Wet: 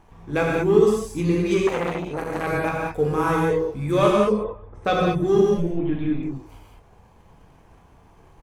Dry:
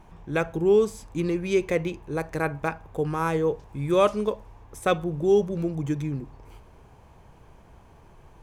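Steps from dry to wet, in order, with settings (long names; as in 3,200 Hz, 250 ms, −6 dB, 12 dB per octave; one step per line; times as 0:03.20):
repeating echo 177 ms, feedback 37%, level −15 dB
leveller curve on the samples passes 1
0:05.57–0:06.23: linear-prediction vocoder at 8 kHz pitch kept
reverb reduction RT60 0.82 s
0:04.21–0:04.85: low-pass filter 1,500 Hz 12 dB per octave
reverb whose tail is shaped and stops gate 240 ms flat, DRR −4 dB
0:01.67–0:02.47: saturating transformer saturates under 1,100 Hz
level −3 dB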